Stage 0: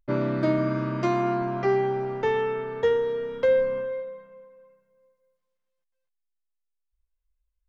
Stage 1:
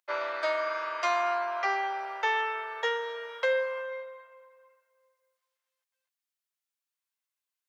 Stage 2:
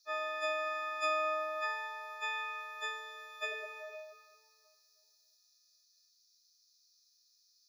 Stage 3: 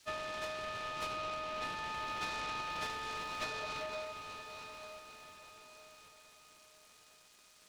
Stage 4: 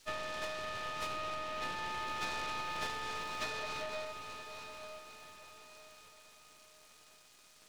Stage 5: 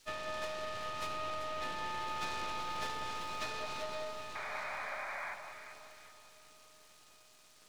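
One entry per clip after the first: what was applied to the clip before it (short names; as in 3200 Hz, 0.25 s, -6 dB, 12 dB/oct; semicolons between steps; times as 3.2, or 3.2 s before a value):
Bessel high-pass 1000 Hz, order 6; gain +5.5 dB
frequency quantiser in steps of 6 st; notch comb 450 Hz; band noise 4100–6200 Hz -63 dBFS; gain -8 dB
compressor 12:1, threshold -44 dBFS, peak gain reduction 16 dB; diffused feedback echo 0.907 s, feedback 40%, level -9 dB; noise-modulated delay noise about 1400 Hz, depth 0.055 ms; gain +6.5 dB
half-wave gain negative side -7 dB; gain +3.5 dB
painted sound noise, 4.35–5.35, 540–2500 Hz -41 dBFS; echo with dull and thin repeats by turns 0.194 s, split 1200 Hz, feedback 61%, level -5 dB; gain -1.5 dB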